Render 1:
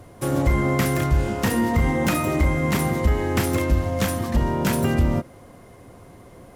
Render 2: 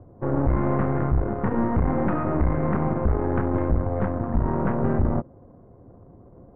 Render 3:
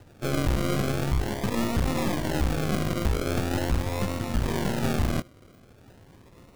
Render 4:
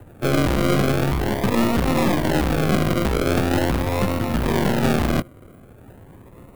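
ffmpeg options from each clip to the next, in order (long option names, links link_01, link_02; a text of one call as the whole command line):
ffmpeg -i in.wav -af "aeval=exprs='(tanh(10*val(0)+0.8)-tanh(0.8))/10':channel_layout=same,adynamicsmooth=sensitivity=3.5:basefreq=590,lowpass=frequency=1500:width=0.5412,lowpass=frequency=1500:width=1.3066,volume=3.5dB" out.wav
ffmpeg -i in.wav -af "acrusher=samples=39:mix=1:aa=0.000001:lfo=1:lforange=23.4:lforate=0.42,volume=-3.5dB" out.wav
ffmpeg -i in.wav -filter_complex "[0:a]acrossover=split=130|7600[link_01][link_02][link_03];[link_01]asoftclip=type=tanh:threshold=-29.5dB[link_04];[link_02]adynamicsmooth=sensitivity=5:basefreq=2200[link_05];[link_04][link_05][link_03]amix=inputs=3:normalize=0,volume=8dB" out.wav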